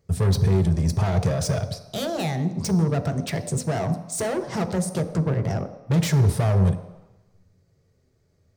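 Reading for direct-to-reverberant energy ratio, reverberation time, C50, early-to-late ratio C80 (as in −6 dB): 7.0 dB, 1.0 s, 11.5 dB, 13.0 dB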